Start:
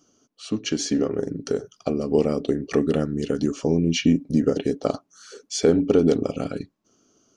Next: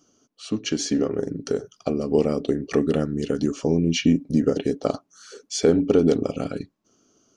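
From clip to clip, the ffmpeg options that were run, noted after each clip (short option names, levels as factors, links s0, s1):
-af anull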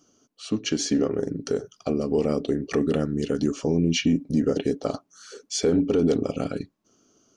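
-af "alimiter=limit=0.237:level=0:latency=1:release=12"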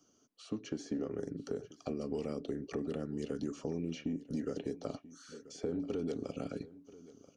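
-filter_complex "[0:a]acrossover=split=210|600|1300[s0][s1][s2][s3];[s0]acompressor=threshold=0.0126:ratio=4[s4];[s1]acompressor=threshold=0.0316:ratio=4[s5];[s2]acompressor=threshold=0.00708:ratio=4[s6];[s3]acompressor=threshold=0.00447:ratio=4[s7];[s4][s5][s6][s7]amix=inputs=4:normalize=0,aecho=1:1:985:0.119,volume=0.422"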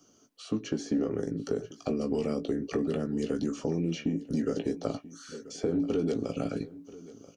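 -filter_complex "[0:a]asplit=2[s0][s1];[s1]adelay=18,volume=0.398[s2];[s0][s2]amix=inputs=2:normalize=0,volume=2.24"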